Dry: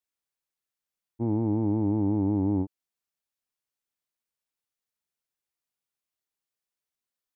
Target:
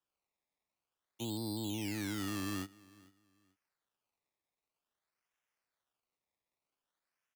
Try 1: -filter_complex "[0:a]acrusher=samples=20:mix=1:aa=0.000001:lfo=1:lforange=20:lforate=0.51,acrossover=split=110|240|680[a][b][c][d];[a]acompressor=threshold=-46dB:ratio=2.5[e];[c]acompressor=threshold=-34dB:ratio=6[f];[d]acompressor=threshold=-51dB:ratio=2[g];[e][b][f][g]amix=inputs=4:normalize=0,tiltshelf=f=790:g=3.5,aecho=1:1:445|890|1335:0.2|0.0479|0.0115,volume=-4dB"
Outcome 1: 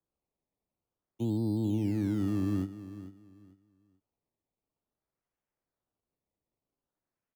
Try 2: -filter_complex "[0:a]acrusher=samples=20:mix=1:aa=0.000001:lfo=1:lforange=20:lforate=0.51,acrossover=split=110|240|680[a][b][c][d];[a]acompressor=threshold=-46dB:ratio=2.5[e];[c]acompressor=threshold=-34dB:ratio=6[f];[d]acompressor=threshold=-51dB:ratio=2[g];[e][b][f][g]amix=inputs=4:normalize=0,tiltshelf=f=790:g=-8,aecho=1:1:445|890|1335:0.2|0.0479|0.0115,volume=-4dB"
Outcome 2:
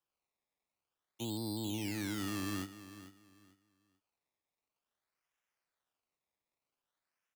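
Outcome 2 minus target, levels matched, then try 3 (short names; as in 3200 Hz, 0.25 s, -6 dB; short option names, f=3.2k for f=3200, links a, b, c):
echo-to-direct +9 dB
-filter_complex "[0:a]acrusher=samples=20:mix=1:aa=0.000001:lfo=1:lforange=20:lforate=0.51,acrossover=split=110|240|680[a][b][c][d];[a]acompressor=threshold=-46dB:ratio=2.5[e];[c]acompressor=threshold=-34dB:ratio=6[f];[d]acompressor=threshold=-51dB:ratio=2[g];[e][b][f][g]amix=inputs=4:normalize=0,tiltshelf=f=790:g=-8,aecho=1:1:445|890:0.0708|0.017,volume=-4dB"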